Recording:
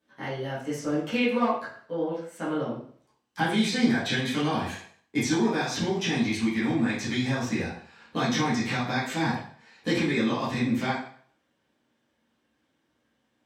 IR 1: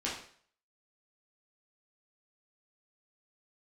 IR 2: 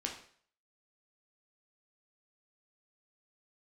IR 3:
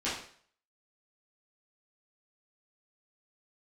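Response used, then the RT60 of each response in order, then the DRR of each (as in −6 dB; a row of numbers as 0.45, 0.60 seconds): 3; 0.55, 0.55, 0.55 seconds; −6.5, 0.0, −11.0 decibels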